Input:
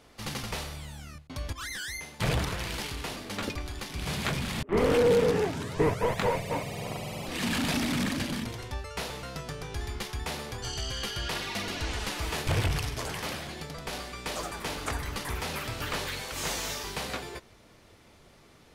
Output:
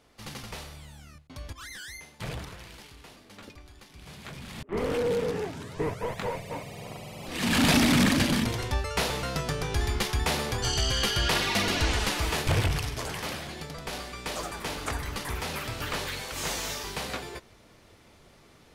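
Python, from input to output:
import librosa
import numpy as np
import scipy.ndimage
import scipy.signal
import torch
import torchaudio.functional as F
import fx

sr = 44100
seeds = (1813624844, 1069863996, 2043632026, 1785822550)

y = fx.gain(x, sr, db=fx.line((1.92, -5.0), (2.85, -13.5), (4.22, -13.5), (4.72, -5.0), (7.17, -5.0), (7.64, 7.5), (11.8, 7.5), (12.8, 0.5)))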